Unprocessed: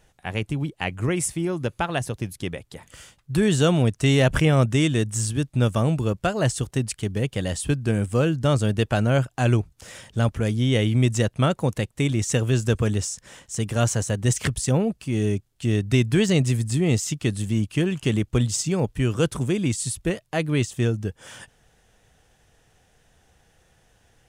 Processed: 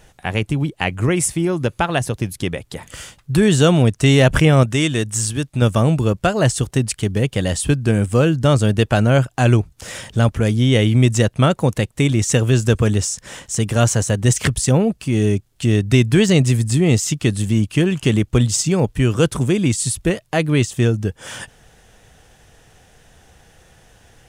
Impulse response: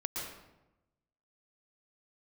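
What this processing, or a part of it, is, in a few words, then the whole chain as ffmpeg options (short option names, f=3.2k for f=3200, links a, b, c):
parallel compression: -filter_complex "[0:a]asplit=2[a][b];[b]acompressor=threshold=-36dB:ratio=6,volume=-1dB[c];[a][c]amix=inputs=2:normalize=0,asettb=1/sr,asplit=3[d][e][f];[d]atrim=end=4.634[g];[e]atrim=start=4.63:end=5.62,asetpts=PTS-STARTPTS,afade=t=in:d=0.004:c=qsin,afade=t=out:st=0.986:d=0.004:c=qsin,lowshelf=f=470:g=-5.5[h];[f]atrim=start=5.616[i];[g][h]acrossfade=d=0.004:c1=hsin:c2=qsin[j];[j][i]acrossfade=d=0.004:c1=qsin:c2=hsin,volume=5dB"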